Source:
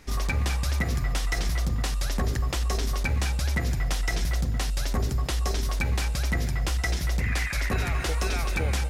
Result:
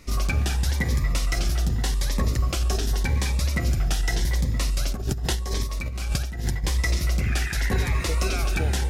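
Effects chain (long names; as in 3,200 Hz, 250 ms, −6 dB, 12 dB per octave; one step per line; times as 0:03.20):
convolution reverb RT60 2.5 s, pre-delay 3 ms, DRR 12.5 dB
0:04.91–0:06.64: compressor whose output falls as the input rises −28 dBFS, ratio −0.5
phaser whose notches keep moving one way rising 0.86 Hz
level +3 dB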